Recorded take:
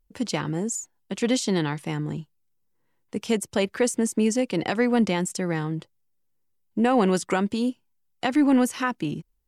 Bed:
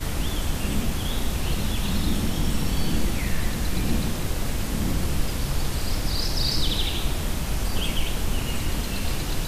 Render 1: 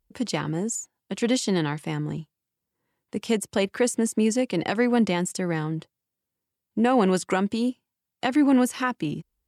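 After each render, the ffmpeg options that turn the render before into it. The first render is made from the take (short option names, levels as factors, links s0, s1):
-af "highpass=44,bandreject=f=6000:w=22"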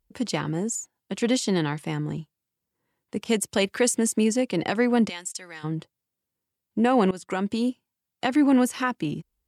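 -filter_complex "[0:a]asettb=1/sr,asplit=3[s0][s1][s2];[s0]atrim=end=3.244[s3];[s1]atrim=start=3.24:end=4.24,asetpts=PTS-STARTPTS,afade=t=in:d=0.004:c=qsin,afade=t=out:st=0.996:d=0.004:c=qsin,adynamicequalizer=threshold=0.01:dfrequency=1900:dqfactor=0.7:tfrequency=1900:tqfactor=0.7:attack=5:release=100:ratio=0.375:range=2.5:mode=boostabove:tftype=highshelf[s4];[s2]atrim=start=4.236[s5];[s3][s4]acrossfade=d=0.004:c1=hsin:c2=qsin[s6];[s6][s5]acrossfade=d=0.004:c1=qsin:c2=hsin,asplit=3[s7][s8][s9];[s7]afade=t=out:st=5.08:d=0.02[s10];[s8]bandpass=f=6100:t=q:w=0.55,afade=t=in:st=5.08:d=0.02,afade=t=out:st=5.63:d=0.02[s11];[s9]afade=t=in:st=5.63:d=0.02[s12];[s10][s11][s12]amix=inputs=3:normalize=0,asplit=2[s13][s14];[s13]atrim=end=7.11,asetpts=PTS-STARTPTS,afade=t=out:st=7.106:d=0.004:c=hsin:silence=0.105925[s15];[s14]atrim=start=7.11,asetpts=PTS-STARTPTS,afade=t=in:d=0.43:silence=0.105925[s16];[s15][s16]concat=n=2:v=0:a=1"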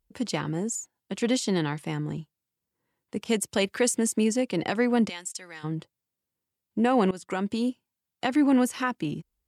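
-af "volume=0.794"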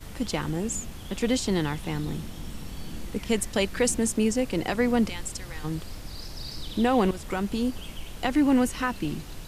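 -filter_complex "[1:a]volume=0.211[s0];[0:a][s0]amix=inputs=2:normalize=0"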